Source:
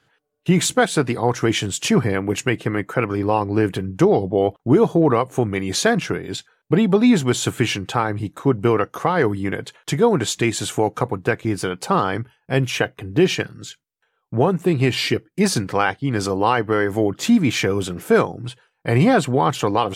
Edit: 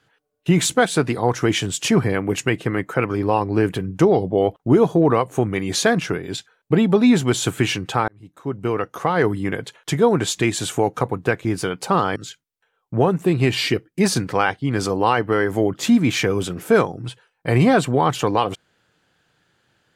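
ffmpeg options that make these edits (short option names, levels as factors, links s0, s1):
-filter_complex "[0:a]asplit=3[s0][s1][s2];[s0]atrim=end=8.08,asetpts=PTS-STARTPTS,afade=t=out:st=8.076:d=0.004:c=hsin[s3];[s1]atrim=start=8.08:end=12.162,asetpts=PTS-STARTPTS,afade=t=in:d=1.12[s4];[s2]atrim=start=13.558[s5];[s3][s4]concat=n=2:v=0:a=1[s6];[s6][s5]acrossfade=d=0.004:c1=hsin:c2=hsin"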